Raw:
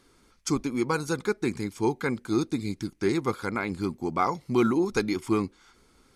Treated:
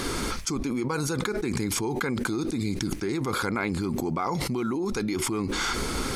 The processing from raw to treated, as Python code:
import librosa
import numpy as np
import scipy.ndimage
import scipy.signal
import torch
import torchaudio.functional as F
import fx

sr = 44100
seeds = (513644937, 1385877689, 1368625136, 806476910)

y = fx.env_flatten(x, sr, amount_pct=100)
y = F.gain(torch.from_numpy(y), -8.5).numpy()